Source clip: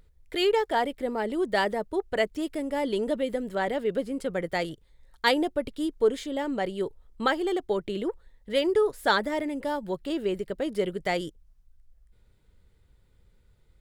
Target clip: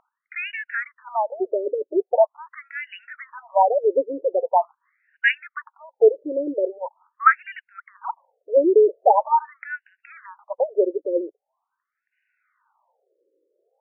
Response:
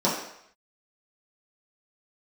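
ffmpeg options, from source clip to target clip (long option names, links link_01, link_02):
-af "asetnsamples=nb_out_samples=441:pad=0,asendcmd='1.78 equalizer g 14',equalizer=frequency=990:width=1.6:gain=6,afftfilt=real='re*between(b*sr/1024,400*pow(2100/400,0.5+0.5*sin(2*PI*0.43*pts/sr))/1.41,400*pow(2100/400,0.5+0.5*sin(2*PI*0.43*pts/sr))*1.41)':imag='im*between(b*sr/1024,400*pow(2100/400,0.5+0.5*sin(2*PI*0.43*pts/sr))/1.41,400*pow(2100/400,0.5+0.5*sin(2*PI*0.43*pts/sr))*1.41)':win_size=1024:overlap=0.75,volume=6.5dB"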